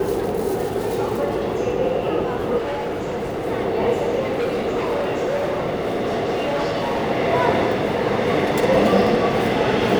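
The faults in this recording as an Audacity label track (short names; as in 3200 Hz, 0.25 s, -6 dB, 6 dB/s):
2.570000	3.470000	clipped -22 dBFS
4.190000	7.110000	clipped -18 dBFS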